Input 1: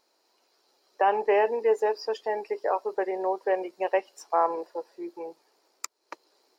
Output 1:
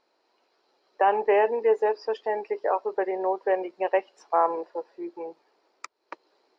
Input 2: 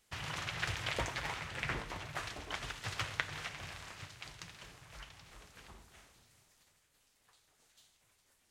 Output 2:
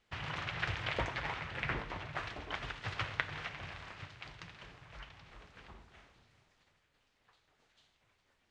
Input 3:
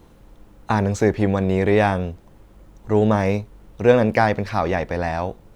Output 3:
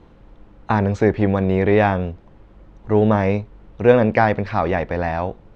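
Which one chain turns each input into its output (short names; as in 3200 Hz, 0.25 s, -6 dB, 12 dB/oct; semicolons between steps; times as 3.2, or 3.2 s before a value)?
LPF 3300 Hz 12 dB/oct; gain +1.5 dB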